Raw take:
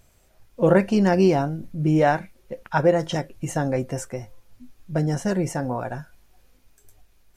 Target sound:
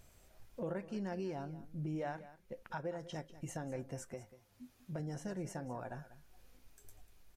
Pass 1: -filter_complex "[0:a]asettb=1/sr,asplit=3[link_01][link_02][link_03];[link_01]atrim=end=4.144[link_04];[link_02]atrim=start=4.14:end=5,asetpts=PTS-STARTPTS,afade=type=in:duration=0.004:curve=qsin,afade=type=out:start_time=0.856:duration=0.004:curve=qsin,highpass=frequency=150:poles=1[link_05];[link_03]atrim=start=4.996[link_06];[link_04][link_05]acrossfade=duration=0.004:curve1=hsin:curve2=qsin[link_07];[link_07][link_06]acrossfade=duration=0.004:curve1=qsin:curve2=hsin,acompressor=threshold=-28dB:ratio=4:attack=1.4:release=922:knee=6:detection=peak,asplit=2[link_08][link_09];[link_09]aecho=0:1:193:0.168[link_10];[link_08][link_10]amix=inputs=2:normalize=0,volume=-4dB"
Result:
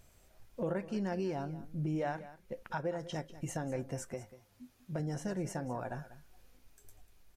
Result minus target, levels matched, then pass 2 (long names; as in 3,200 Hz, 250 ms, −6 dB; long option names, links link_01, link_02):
downward compressor: peak gain reduction −5 dB
-filter_complex "[0:a]asettb=1/sr,asplit=3[link_01][link_02][link_03];[link_01]atrim=end=4.144[link_04];[link_02]atrim=start=4.14:end=5,asetpts=PTS-STARTPTS,afade=type=in:duration=0.004:curve=qsin,afade=type=out:start_time=0.856:duration=0.004:curve=qsin,highpass=frequency=150:poles=1[link_05];[link_03]atrim=start=4.996[link_06];[link_04][link_05]acrossfade=duration=0.004:curve1=hsin:curve2=qsin[link_07];[link_07][link_06]acrossfade=duration=0.004:curve1=qsin:curve2=hsin,acompressor=threshold=-34.5dB:ratio=4:attack=1.4:release=922:knee=6:detection=peak,asplit=2[link_08][link_09];[link_09]aecho=0:1:193:0.168[link_10];[link_08][link_10]amix=inputs=2:normalize=0,volume=-4dB"